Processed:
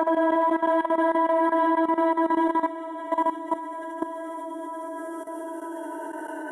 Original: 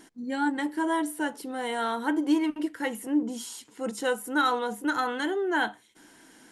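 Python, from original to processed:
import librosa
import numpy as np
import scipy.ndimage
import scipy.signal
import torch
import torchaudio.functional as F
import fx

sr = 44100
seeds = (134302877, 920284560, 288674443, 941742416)

p1 = fx.reverse_delay(x, sr, ms=124, wet_db=-6.0)
p2 = 10.0 ** (-27.0 / 20.0) * np.tanh(p1 / 10.0 ** (-27.0 / 20.0))
p3 = p1 + (p2 * librosa.db_to_amplitude(-8.0))
p4 = fx.bandpass_q(p3, sr, hz=680.0, q=0.88)
p5 = fx.hum_notches(p4, sr, base_hz=50, count=10)
p6 = fx.rider(p5, sr, range_db=4, speed_s=2.0)
p7 = fx.noise_reduce_blind(p6, sr, reduce_db=11)
p8 = fx.paulstretch(p7, sr, seeds[0], factor=24.0, window_s=0.25, from_s=0.9)
p9 = p8 + fx.echo_single(p8, sr, ms=75, db=-4.5, dry=0)
p10 = fx.level_steps(p9, sr, step_db=13)
y = p10 * librosa.db_to_amplitude(5.0)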